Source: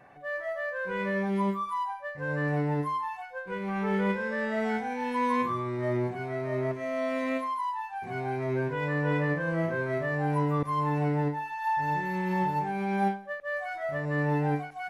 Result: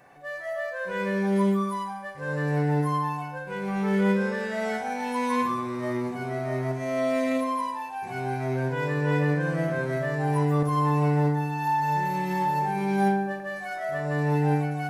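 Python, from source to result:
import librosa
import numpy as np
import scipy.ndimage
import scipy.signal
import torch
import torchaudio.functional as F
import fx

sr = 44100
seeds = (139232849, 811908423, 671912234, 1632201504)

y = fx.bass_treble(x, sr, bass_db=-2, treble_db=11)
y = fx.echo_filtered(y, sr, ms=61, feedback_pct=70, hz=2400.0, wet_db=-8.0)
y = fx.rev_fdn(y, sr, rt60_s=3.1, lf_ratio=1.0, hf_ratio=0.85, size_ms=12.0, drr_db=10.5)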